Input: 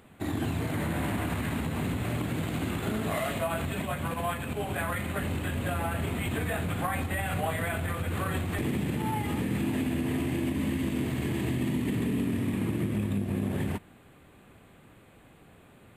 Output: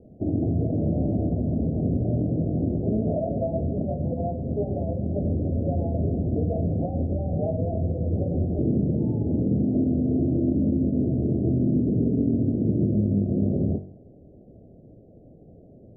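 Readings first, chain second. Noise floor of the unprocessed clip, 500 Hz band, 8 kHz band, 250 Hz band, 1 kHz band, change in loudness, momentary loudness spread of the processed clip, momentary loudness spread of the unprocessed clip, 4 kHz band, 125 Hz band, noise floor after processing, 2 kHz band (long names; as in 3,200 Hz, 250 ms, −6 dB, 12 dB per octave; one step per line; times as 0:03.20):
−56 dBFS, +6.0 dB, below −35 dB, +7.0 dB, −6.0 dB, +5.5 dB, 5 LU, 3 LU, below −40 dB, +7.0 dB, −50 dBFS, below −40 dB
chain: Butterworth low-pass 670 Hz 72 dB per octave
hum removal 47.55 Hz, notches 29
level +7.5 dB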